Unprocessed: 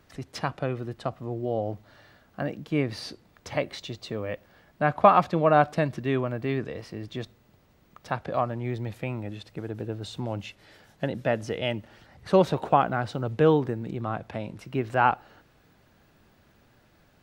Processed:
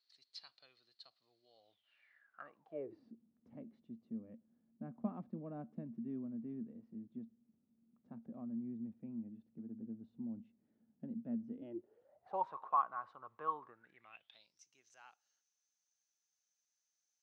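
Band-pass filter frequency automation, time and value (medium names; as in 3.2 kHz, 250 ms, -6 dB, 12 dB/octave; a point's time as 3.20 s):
band-pass filter, Q 15
1.61 s 4.3 kHz
2.59 s 1 kHz
3.06 s 230 Hz
11.49 s 230 Hz
12.55 s 1.1 kHz
13.67 s 1.1 kHz
14.62 s 6.2 kHz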